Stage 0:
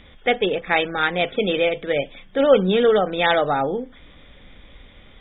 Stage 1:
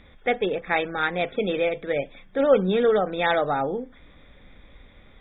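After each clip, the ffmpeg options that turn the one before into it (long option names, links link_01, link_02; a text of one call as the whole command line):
ffmpeg -i in.wav -af "equalizer=frequency=3000:width_type=o:width=0.25:gain=-12.5,volume=-3.5dB" out.wav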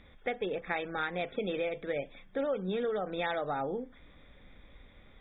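ffmpeg -i in.wav -af "acompressor=threshold=-24dB:ratio=6,volume=-5.5dB" out.wav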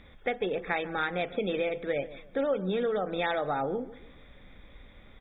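ffmpeg -i in.wav -filter_complex "[0:a]asplit=2[link_01][link_02];[link_02]adelay=144,lowpass=frequency=1100:poles=1,volume=-15dB,asplit=2[link_03][link_04];[link_04]adelay=144,lowpass=frequency=1100:poles=1,volume=0.37,asplit=2[link_05][link_06];[link_06]adelay=144,lowpass=frequency=1100:poles=1,volume=0.37[link_07];[link_01][link_03][link_05][link_07]amix=inputs=4:normalize=0,volume=3.5dB" out.wav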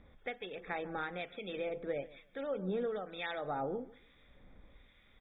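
ffmpeg -i in.wav -filter_complex "[0:a]acrossover=split=1400[link_01][link_02];[link_01]aeval=exprs='val(0)*(1-0.7/2+0.7/2*cos(2*PI*1.1*n/s))':channel_layout=same[link_03];[link_02]aeval=exprs='val(0)*(1-0.7/2-0.7/2*cos(2*PI*1.1*n/s))':channel_layout=same[link_04];[link_03][link_04]amix=inputs=2:normalize=0,volume=-5.5dB" out.wav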